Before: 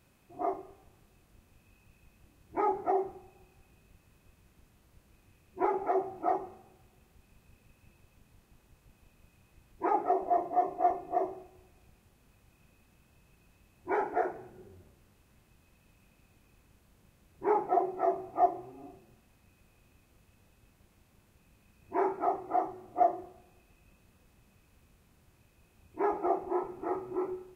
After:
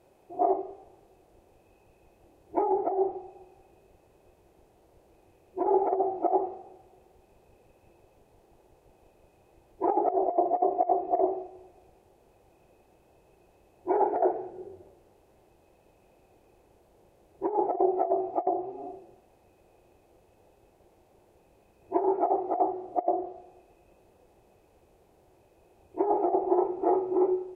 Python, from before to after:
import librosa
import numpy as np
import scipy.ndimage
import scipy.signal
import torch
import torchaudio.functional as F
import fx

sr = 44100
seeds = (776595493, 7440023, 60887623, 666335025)

y = fx.env_lowpass_down(x, sr, base_hz=1300.0, full_db=-24.5)
y = fx.band_shelf(y, sr, hz=540.0, db=15.0, octaves=1.7)
y = fx.over_compress(y, sr, threshold_db=-17.0, ratio=-0.5)
y = y * librosa.db_to_amplitude(-6.5)